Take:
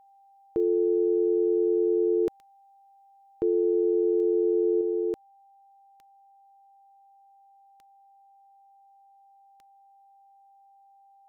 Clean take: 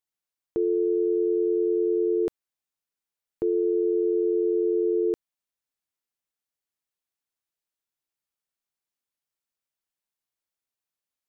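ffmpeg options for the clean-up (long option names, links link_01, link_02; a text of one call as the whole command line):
ffmpeg -i in.wav -af "adeclick=threshold=4,bandreject=frequency=790:width=30,asetnsamples=nb_out_samples=441:pad=0,asendcmd='4.81 volume volume 3.5dB',volume=0dB" out.wav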